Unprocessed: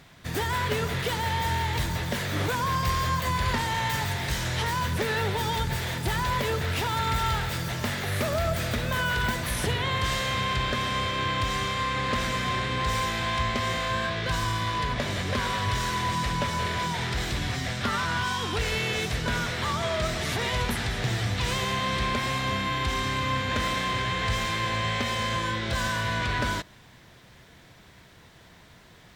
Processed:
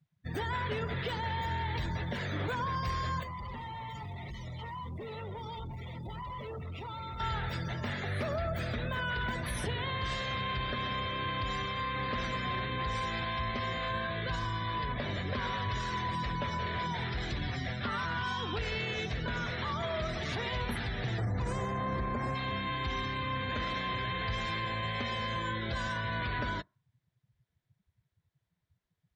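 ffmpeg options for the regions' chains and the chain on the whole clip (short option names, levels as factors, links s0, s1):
-filter_complex "[0:a]asettb=1/sr,asplit=3[s0][s1][s2];[s0]atrim=end=3.234[s3];[s1]atrim=start=3.23:end=7.2,asetpts=PTS-STARTPTS,afade=t=in:d=0.004:c=qsin,afade=t=out:st=3.966:d=0.004:c=qsin,asuperstop=centerf=1600:order=12:qfactor=3.9,volume=47.3,asoftclip=hard,volume=0.0211[s4];[s2]atrim=start=7.196[s5];[s3][s4]acrossfade=d=0.004:c1=hsin:c2=qsin[s6];[s6][s5]acrossfade=d=0.004:c1=qsin:c2=hsin,asettb=1/sr,asplit=3[s7][s8][s9];[s7]atrim=end=21.184[s10];[s8]atrim=start=21.18:end=22.35,asetpts=PTS-STARTPTS,afade=t=in:d=0.004:c=qsin,afade=t=out:st=1.166:d=0.004:c=qsin,equalizer=f=3200:w=0.79:g=-14.5,acontrast=63[s11];[s9]atrim=start=22.346[s12];[s10][s11]acrossfade=d=0.004:c1=hsin:c2=qsin[s13];[s13][s12]acrossfade=d=0.004:c1=qsin:c2=hsin,afftdn=nr=32:nf=-36,alimiter=limit=0.0841:level=0:latency=1,volume=0.596"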